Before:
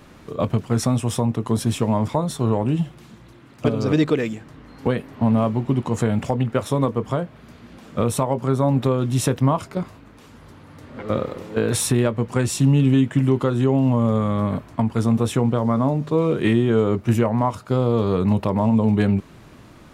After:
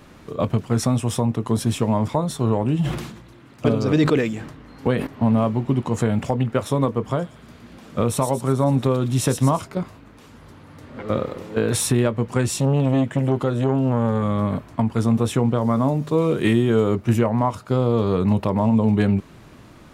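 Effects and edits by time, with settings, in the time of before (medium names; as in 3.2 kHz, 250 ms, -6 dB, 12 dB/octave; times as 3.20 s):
2.79–5.07 s: decay stretcher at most 64 dB/s
7.00–9.65 s: feedback echo behind a high-pass 116 ms, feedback 51%, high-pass 4.1 kHz, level -4.5 dB
12.54–14.23 s: transformer saturation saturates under 350 Hz
15.61–16.95 s: treble shelf 6.9 kHz +10 dB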